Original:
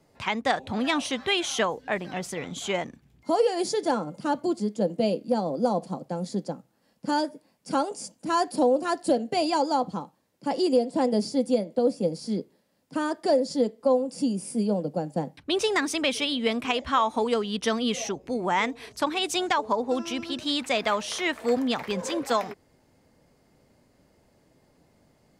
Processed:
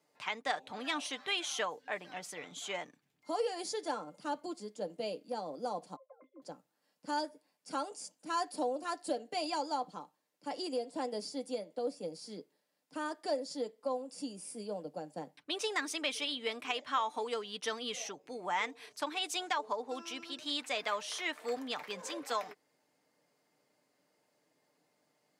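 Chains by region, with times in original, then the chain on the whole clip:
5.96–6.42 s: formants replaced by sine waves + high-pass 360 Hz + pitch-class resonator C, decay 0.1 s
whole clip: high-pass 200 Hz 12 dB/octave; bass shelf 470 Hz -10 dB; comb 6.7 ms, depth 34%; trim -8 dB

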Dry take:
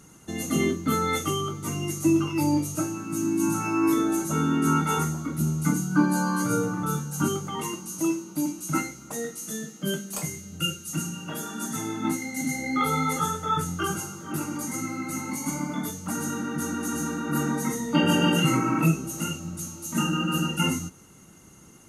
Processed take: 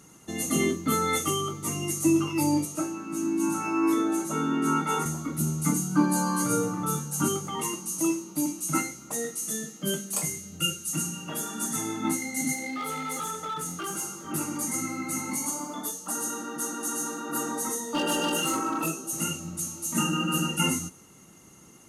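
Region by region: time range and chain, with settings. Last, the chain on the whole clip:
2.65–5.06 s: high-pass 200 Hz + treble shelf 5.4 kHz -9.5 dB
12.53–14.25 s: high-pass 190 Hz + compression 2.5:1, threshold -30 dBFS + hard clipper -28 dBFS
15.46–19.13 s: high-pass 350 Hz + overload inside the chain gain 21 dB + peaking EQ 2.2 kHz -15 dB 0.28 oct
whole clip: bass shelf 120 Hz -8 dB; band-stop 1.5 kHz, Q 11; dynamic bell 9.2 kHz, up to +7 dB, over -50 dBFS, Q 1.3

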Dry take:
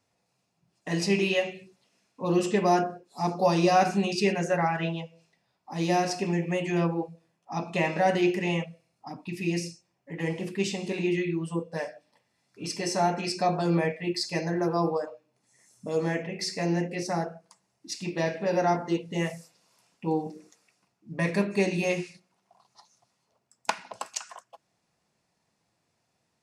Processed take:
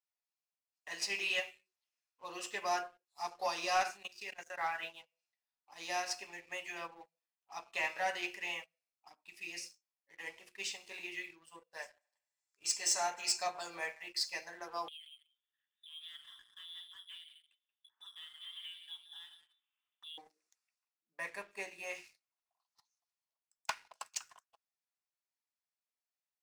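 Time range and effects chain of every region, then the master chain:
3.96–4.61 s: level held to a coarse grid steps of 14 dB + tape noise reduction on one side only encoder only
11.82–14.09 s: peaking EQ 7.3 kHz +14.5 dB 0.44 oct + feedback echo behind a band-pass 75 ms, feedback 55%, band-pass 1.1 kHz, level -13.5 dB
14.88–20.18 s: compression 3:1, threshold -44 dBFS + delay 180 ms -10 dB + frequency inversion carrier 3.7 kHz
21.16–21.95 s: high-pass 50 Hz + peaking EQ 4.3 kHz -10 dB 1.5 oct
whole clip: high-pass 1.1 kHz 12 dB/octave; waveshaping leveller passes 2; upward expansion 1.5:1, over -38 dBFS; trim -8.5 dB

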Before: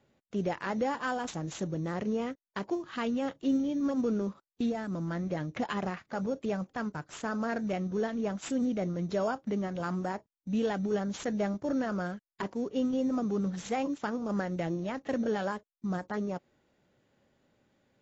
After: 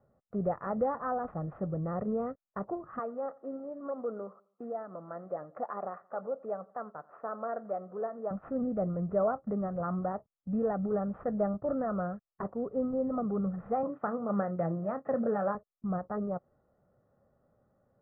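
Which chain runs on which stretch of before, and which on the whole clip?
2.99–8.31 s: high-pass 460 Hz + treble shelf 2.9 kHz -12 dB + feedback delay 88 ms, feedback 41%, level -22.5 dB
13.83–15.55 s: high-pass 110 Hz 24 dB/octave + treble shelf 2.1 kHz +9.5 dB + doubling 30 ms -12.5 dB
whole clip: steep low-pass 1.4 kHz 36 dB/octave; comb 1.6 ms, depth 52%

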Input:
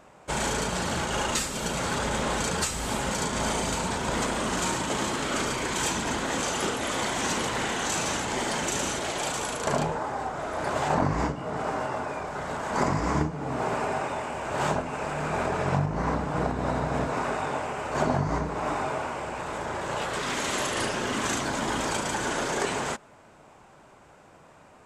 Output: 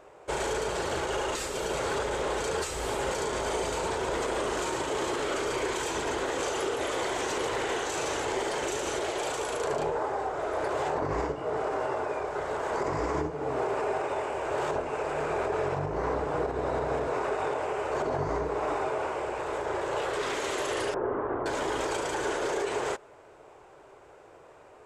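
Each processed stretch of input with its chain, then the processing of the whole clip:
20.94–21.46 s: CVSD coder 64 kbps + low-pass 1.3 kHz 24 dB/octave
whole clip: resonant low shelf 290 Hz -11.5 dB, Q 3; peak limiter -19.5 dBFS; tone controls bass +11 dB, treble -3 dB; trim -2 dB

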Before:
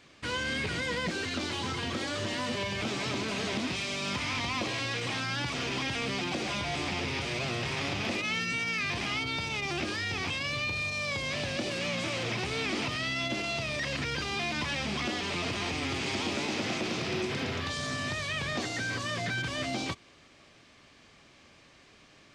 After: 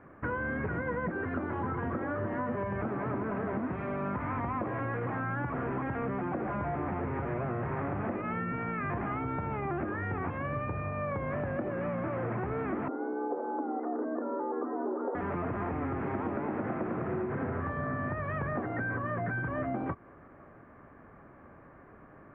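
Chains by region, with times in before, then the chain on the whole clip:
12.88–15.15 s: Bessel low-pass 740 Hz, order 8 + frequency shift +170 Hz
whole clip: steep low-pass 1.6 kHz 36 dB/octave; compression, threshold -37 dBFS; trim +7 dB

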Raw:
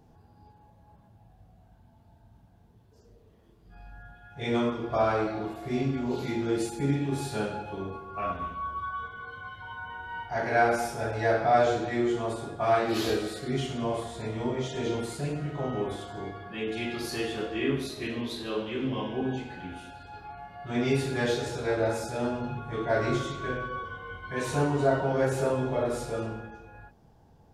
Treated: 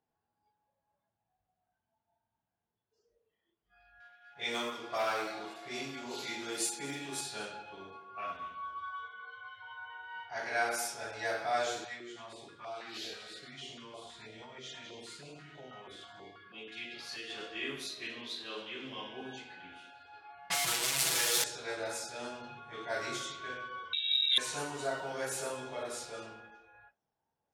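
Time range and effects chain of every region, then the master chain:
4.00–7.21 s: high-pass 180 Hz 6 dB/octave + hum notches 50/100/150/200/250/300/350/400/450 Hz + waveshaping leveller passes 1
11.84–17.30 s: compression 2.5:1, threshold -31 dBFS + step-sequenced notch 6.2 Hz 330–1800 Hz
20.50–21.44 s: one-bit comparator + comb 6.1 ms, depth 87%
23.93–24.38 s: tilt EQ -4 dB/octave + frequency inversion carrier 3.8 kHz + transformer saturation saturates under 2.2 kHz
whole clip: level-controlled noise filter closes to 2.3 kHz, open at -21.5 dBFS; spectral noise reduction 13 dB; tilt EQ +4.5 dB/octave; trim -8 dB

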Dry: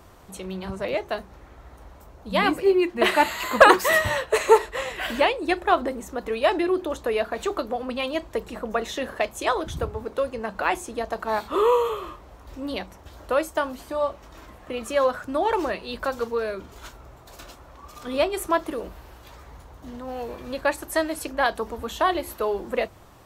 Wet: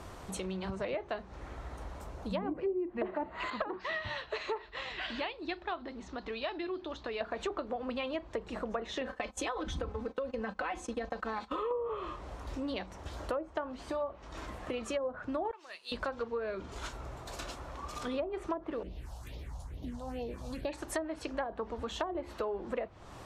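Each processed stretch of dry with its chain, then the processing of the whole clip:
3.50–7.21 s: four-pole ladder low-pass 5.1 kHz, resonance 45% + peaking EQ 510 Hz -8 dB 0.31 oct
9.01–11.71 s: gate -38 dBFS, range -17 dB + comb 3.9 ms, depth 90% + compression 4:1, threshold -24 dBFS
15.51–15.92 s: differentiator + upward expansion, over -54 dBFS
18.83–20.73 s: peaking EQ 1.2 kHz -8 dB 1.4 oct + phase shifter stages 4, 2.3 Hz, lowest notch 320–1500 Hz
whole clip: low-pass 10 kHz; low-pass that closes with the level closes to 590 Hz, closed at -17 dBFS; compression 3:1, threshold -40 dBFS; trim +3 dB

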